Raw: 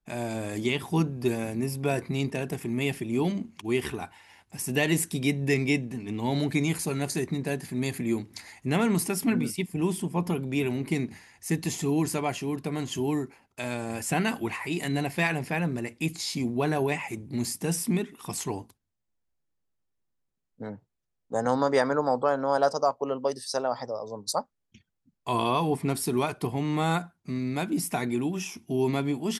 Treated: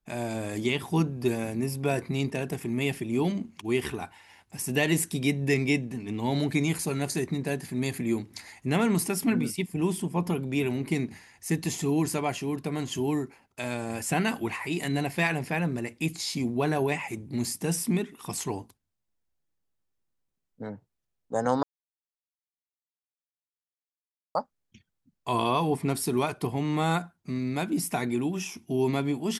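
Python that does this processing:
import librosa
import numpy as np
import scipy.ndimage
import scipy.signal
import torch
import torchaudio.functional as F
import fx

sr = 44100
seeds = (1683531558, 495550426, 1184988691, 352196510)

y = fx.edit(x, sr, fx.silence(start_s=21.63, length_s=2.72), tone=tone)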